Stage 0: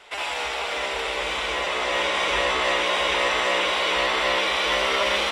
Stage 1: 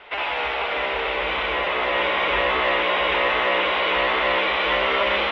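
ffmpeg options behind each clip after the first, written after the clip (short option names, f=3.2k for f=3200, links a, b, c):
-filter_complex "[0:a]lowpass=f=3.1k:w=0.5412,lowpass=f=3.1k:w=1.3066,asplit=2[a][b];[b]alimiter=limit=-22.5dB:level=0:latency=1,volume=-2.5dB[c];[a][c]amix=inputs=2:normalize=0"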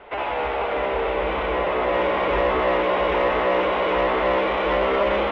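-af "tiltshelf=f=1.5k:g=10,acontrast=65,volume=-9dB"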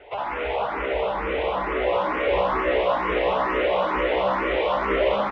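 -filter_complex "[0:a]aecho=1:1:193:0.596,asplit=2[a][b];[b]afreqshift=2.2[c];[a][c]amix=inputs=2:normalize=1"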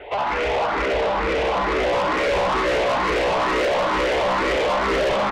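-af "asoftclip=type=tanh:threshold=-27dB,volume=9dB"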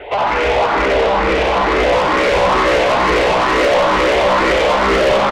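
-af "aecho=1:1:91:0.422,volume=6.5dB"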